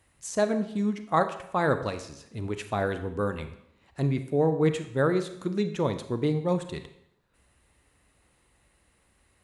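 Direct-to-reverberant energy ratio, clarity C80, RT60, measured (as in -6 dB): 9.0 dB, 13.5 dB, 0.75 s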